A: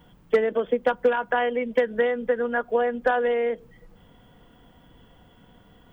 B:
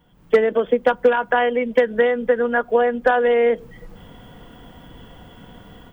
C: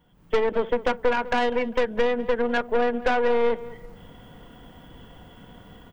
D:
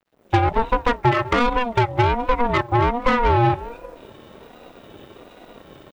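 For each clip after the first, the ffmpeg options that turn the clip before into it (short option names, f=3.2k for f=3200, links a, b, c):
-af "dynaudnorm=f=120:g=3:m=16dB,volume=-5dB"
-filter_complex "[0:a]aeval=exprs='(tanh(7.08*val(0)+0.7)-tanh(0.7))/7.08':c=same,asplit=2[a][b];[b]adelay=200,lowpass=f=2.7k:p=1,volume=-16.5dB,asplit=2[c][d];[d]adelay=200,lowpass=f=2.7k:p=1,volume=0.32,asplit=2[e][f];[f]adelay=200,lowpass=f=2.7k:p=1,volume=0.32[g];[a][c][e][g]amix=inputs=4:normalize=0"
-af "aeval=exprs='sgn(val(0))*max(abs(val(0))-0.00133,0)':c=same,aeval=exprs='val(0)*sin(2*PI*430*n/s+430*0.2/1.3*sin(2*PI*1.3*n/s))':c=same,volume=7dB"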